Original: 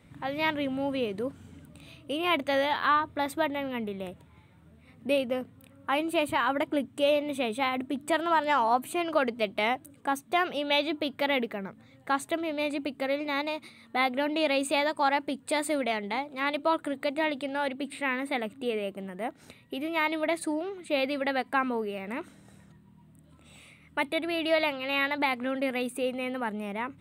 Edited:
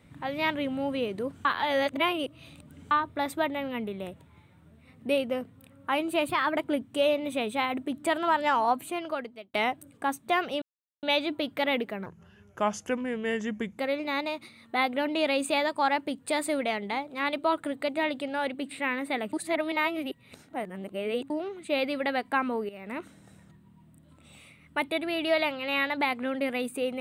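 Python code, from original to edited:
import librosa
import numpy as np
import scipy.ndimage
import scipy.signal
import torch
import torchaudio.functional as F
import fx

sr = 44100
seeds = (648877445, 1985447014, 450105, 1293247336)

y = fx.edit(x, sr, fx.reverse_span(start_s=1.45, length_s=1.46),
    fx.speed_span(start_s=6.29, length_s=0.3, speed=1.12),
    fx.fade_out_span(start_s=8.71, length_s=0.86),
    fx.insert_silence(at_s=10.65, length_s=0.41),
    fx.speed_span(start_s=11.68, length_s=1.31, speed=0.76),
    fx.reverse_span(start_s=18.54, length_s=1.97),
    fx.fade_in_from(start_s=21.9, length_s=0.3, floor_db=-12.0), tone=tone)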